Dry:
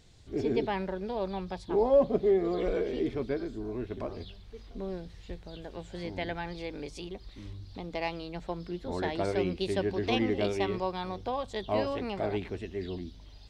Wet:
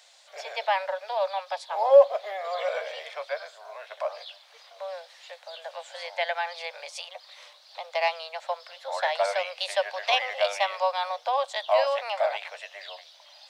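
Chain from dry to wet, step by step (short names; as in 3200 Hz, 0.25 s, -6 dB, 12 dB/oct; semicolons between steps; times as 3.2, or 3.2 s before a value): steep high-pass 540 Hz 96 dB/oct; gain +9 dB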